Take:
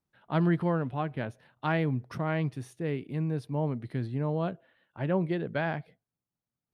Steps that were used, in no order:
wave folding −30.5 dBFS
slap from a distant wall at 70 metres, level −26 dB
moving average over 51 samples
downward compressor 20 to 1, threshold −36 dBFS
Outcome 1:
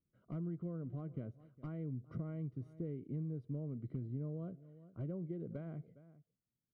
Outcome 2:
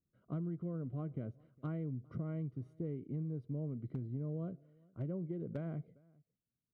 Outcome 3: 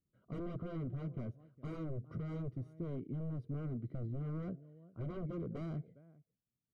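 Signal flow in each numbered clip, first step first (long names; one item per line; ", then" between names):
slap from a distant wall, then downward compressor, then wave folding, then moving average
moving average, then downward compressor, then slap from a distant wall, then wave folding
slap from a distant wall, then wave folding, then moving average, then downward compressor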